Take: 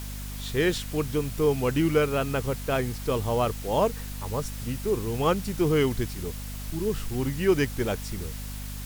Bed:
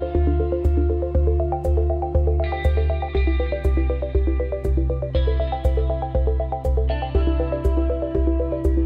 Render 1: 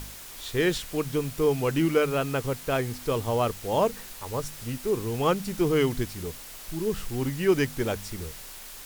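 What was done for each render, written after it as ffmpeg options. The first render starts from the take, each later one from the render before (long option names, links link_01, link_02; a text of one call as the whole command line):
ffmpeg -i in.wav -af "bandreject=frequency=50:width_type=h:width=4,bandreject=frequency=100:width_type=h:width=4,bandreject=frequency=150:width_type=h:width=4,bandreject=frequency=200:width_type=h:width=4,bandreject=frequency=250:width_type=h:width=4" out.wav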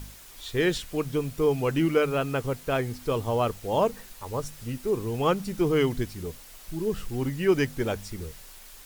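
ffmpeg -i in.wav -af "afftdn=noise_reduction=6:noise_floor=-43" out.wav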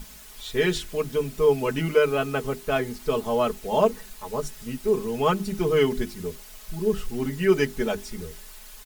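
ffmpeg -i in.wav -af "bandreject=frequency=50:width_type=h:width=6,bandreject=frequency=100:width_type=h:width=6,bandreject=frequency=150:width_type=h:width=6,bandreject=frequency=200:width_type=h:width=6,bandreject=frequency=250:width_type=h:width=6,bandreject=frequency=300:width_type=h:width=6,bandreject=frequency=350:width_type=h:width=6,bandreject=frequency=400:width_type=h:width=6,aecho=1:1:4.7:0.82" out.wav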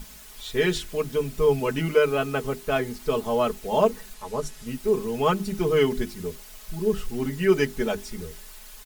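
ffmpeg -i in.wav -filter_complex "[0:a]asettb=1/sr,asplit=3[link_01][link_02][link_03];[link_01]atrim=end=1.184[link_04];[link_02]atrim=start=1.18:end=1.6,asetpts=PTS-STARTPTS,afade=type=in:duration=0.004:curve=qsin,afade=type=out:start_time=0.416:duration=0.004:curve=qsin,asubboost=boost=10:cutoff=200[link_05];[link_03]atrim=start=1.596[link_06];[link_04][link_05]acrossfade=duration=0.004:curve1=hsin:curve2=qsin[link_07];[link_07][link_06]acrossfade=duration=0.004:curve1=qsin:curve2=hsin,asettb=1/sr,asplit=3[link_08][link_09][link_10];[link_08]atrim=end=4.144[link_11];[link_09]atrim=start=4.14:end=4.67,asetpts=PTS-STARTPTS,afade=type=in:duration=0.004:curve=qsin,afade=type=out:start_time=0.526:duration=0.004:curve=qsin,lowpass=12000[link_12];[link_10]atrim=start=4.666[link_13];[link_11][link_12]acrossfade=duration=0.004:curve1=hsin:curve2=qsin[link_14];[link_14][link_13]acrossfade=duration=0.004:curve1=qsin:curve2=hsin" out.wav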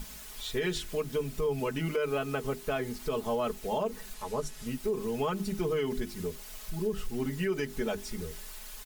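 ffmpeg -i in.wav -af "alimiter=limit=-16.5dB:level=0:latency=1:release=97,acompressor=threshold=-36dB:ratio=1.5" out.wav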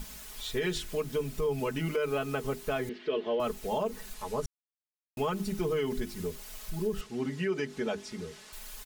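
ffmpeg -i in.wav -filter_complex "[0:a]asettb=1/sr,asplit=3[link_01][link_02][link_03];[link_01]atrim=end=2.894[link_04];[link_02]atrim=start=2.89:end=3.4,asetpts=PTS-STARTPTS,afade=type=in:duration=0.004:curve=qsin,afade=type=out:start_time=0.506:duration=0.004:curve=qsin,highpass=290,equalizer=frequency=350:width_type=q:width=4:gain=9,equalizer=frequency=550:width_type=q:width=4:gain=3,equalizer=frequency=830:width_type=q:width=4:gain=-8,equalizer=frequency=1200:width_type=q:width=4:gain=-6,equalizer=frequency=1800:width_type=q:width=4:gain=7,equalizer=frequency=3000:width_type=q:width=4:gain=6,lowpass=frequency=3700:width=0.5412,lowpass=frequency=3700:width=1.3066[link_05];[link_03]atrim=start=3.396[link_06];[link_04][link_05]acrossfade=duration=0.004:curve1=hsin:curve2=qsin[link_07];[link_07][link_06]acrossfade=duration=0.004:curve1=qsin:curve2=hsin,asettb=1/sr,asplit=3[link_08][link_09][link_10];[link_08]atrim=end=7.014[link_11];[link_09]atrim=start=7.01:end=8.53,asetpts=PTS-STARTPTS,afade=type=in:duration=0.004:curve=qsin,afade=type=out:start_time=1.516:duration=0.004:curve=qsin,highpass=130,lowpass=6400[link_12];[link_10]atrim=start=8.526[link_13];[link_11][link_12]acrossfade=duration=0.004:curve1=hsin:curve2=qsin[link_14];[link_14][link_13]acrossfade=duration=0.004:curve1=qsin:curve2=hsin,asplit=3[link_15][link_16][link_17];[link_15]atrim=end=4.46,asetpts=PTS-STARTPTS,afade=type=out:start_time=4.456:duration=0.004:curve=hsin[link_18];[link_16]atrim=start=4.46:end=5.17,asetpts=PTS-STARTPTS,volume=0[link_19];[link_17]atrim=start=5.17,asetpts=PTS-STARTPTS,afade=type=in:duration=0.004:curve=hsin[link_20];[link_18][link_19][link_20]concat=n=3:v=0:a=1" out.wav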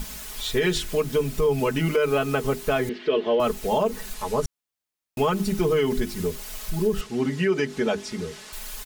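ffmpeg -i in.wav -af "volume=8.5dB" out.wav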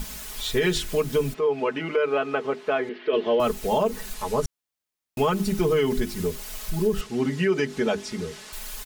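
ffmpeg -i in.wav -filter_complex "[0:a]asplit=3[link_01][link_02][link_03];[link_01]afade=type=out:start_time=1.33:duration=0.02[link_04];[link_02]highpass=330,lowpass=2800,afade=type=in:start_time=1.33:duration=0.02,afade=type=out:start_time=3.12:duration=0.02[link_05];[link_03]afade=type=in:start_time=3.12:duration=0.02[link_06];[link_04][link_05][link_06]amix=inputs=3:normalize=0" out.wav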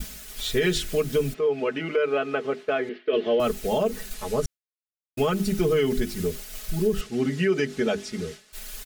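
ffmpeg -i in.wav -af "agate=range=-33dB:threshold=-32dB:ratio=3:detection=peak,equalizer=frequency=960:width_type=o:width=0.32:gain=-12" out.wav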